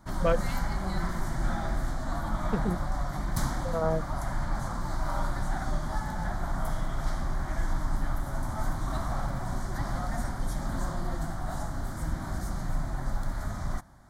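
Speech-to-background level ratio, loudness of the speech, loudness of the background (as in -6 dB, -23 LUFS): 1.5 dB, -32.5 LUFS, -34.0 LUFS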